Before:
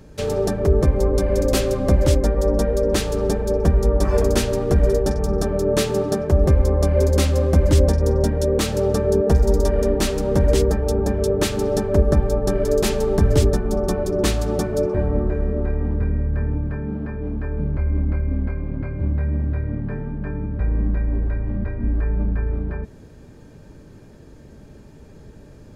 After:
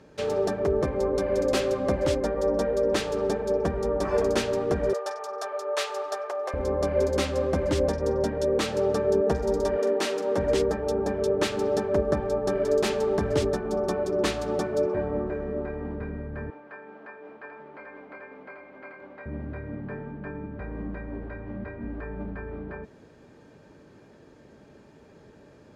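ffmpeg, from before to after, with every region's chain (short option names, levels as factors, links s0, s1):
-filter_complex "[0:a]asettb=1/sr,asplit=3[s0][s1][s2];[s0]atrim=end=4.934[s3];[s1]atrim=start=4.93:end=6.54,asetpts=PTS-STARTPTS,afade=t=in:d=0.004:c=qsin,afade=t=out:st=1.606:d=0.004:c=qsin,highpass=f=600:w=0.5412,highpass=f=600:w=1.3066,aeval=exprs='val(0)+0.0126*sin(2*PI*1200*n/s)':c=same[s4];[s2]atrim=start=6.536[s5];[s3][s4]acrossfade=d=0.004:c1=hsin:c2=qsin[s6];[s6][s5]acrossfade=d=0.004:c1=qsin:c2=hsin,asettb=1/sr,asplit=3[s7][s8][s9];[s7]atrim=end=9.774[s10];[s8]atrim=start=9.77:end=10.38,asetpts=PTS-STARTPTS,afade=t=in:d=0.004:c=qsin,afade=t=out:st=0.606:d=0.004:c=qsin,highpass=300,asplit=2[s11][s12];[s12]adelay=43,volume=0.266[s13];[s11][s13]amix=inputs=2:normalize=0,atrim=end_sample=26901[s14];[s9]atrim=start=10.376[s15];[s10][s14]acrossfade=d=0.004:c1=hsin:c2=qsin[s16];[s16][s15]acrossfade=d=0.004:c1=qsin:c2=hsin,asettb=1/sr,asplit=3[s17][s18][s19];[s17]atrim=end=16.504[s20];[s18]atrim=start=16.5:end=19.26,asetpts=PTS-STARTPTS,afade=t=in:d=0.004:c=qsin,afade=t=out:st=2.756:d=0.004:c=qsin,highpass=650,aecho=1:1:789:0.596,atrim=end_sample=121716[s21];[s19]atrim=start=19.256[s22];[s20][s21]acrossfade=d=0.004:c1=hsin:c2=qsin[s23];[s23][s22]acrossfade=d=0.004:c1=qsin:c2=hsin,highpass=f=450:p=1,aemphasis=mode=reproduction:type=50fm,volume=0.891"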